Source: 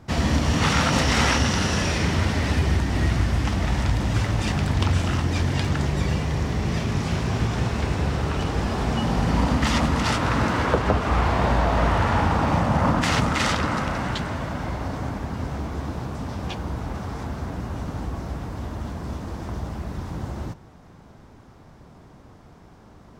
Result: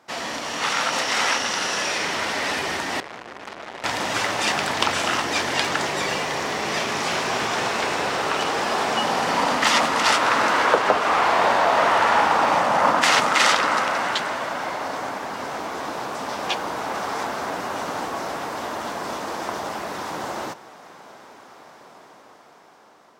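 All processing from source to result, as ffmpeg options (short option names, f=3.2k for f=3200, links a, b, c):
-filter_complex "[0:a]asettb=1/sr,asplit=3[a][b][c];[a]atrim=end=3.004[d];[b]atrim=start=3:end=3.84,asetpts=PTS-STARTPTS,afade=t=in:d=0.004:c=qsin,afade=t=out:st=0.836:d=0.004:c=qsin,lowpass=f=1.5k:p=1,aeval=exprs='(tanh(50.1*val(0)+0.6)-tanh(0.6))/50.1':c=same[e];[c]atrim=start=3.836[f];[d][e]acrossfade=d=0.004:c1=hsin:c2=qsin[g];[g][f]acrossfade=d=0.004:c1=qsin:c2=hsin,highpass=550,dynaudnorm=f=660:g=7:m=12dB"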